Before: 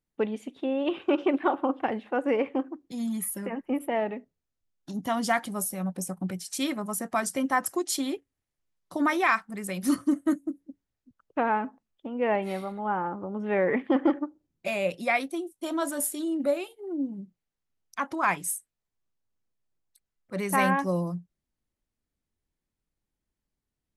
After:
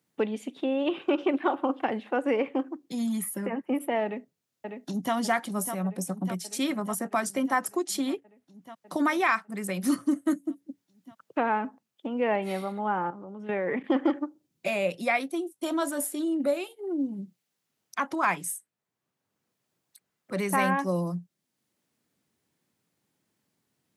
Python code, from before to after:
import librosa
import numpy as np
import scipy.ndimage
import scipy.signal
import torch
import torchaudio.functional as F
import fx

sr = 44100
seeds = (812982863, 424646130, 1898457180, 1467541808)

y = fx.echo_throw(x, sr, start_s=4.04, length_s=1.1, ms=600, feedback_pct=70, wet_db=-9.5)
y = fx.level_steps(y, sr, step_db=15, at=(13.1, 13.84))
y = scipy.signal.sosfilt(scipy.signal.butter(4, 120.0, 'highpass', fs=sr, output='sos'), y)
y = fx.band_squash(y, sr, depth_pct=40)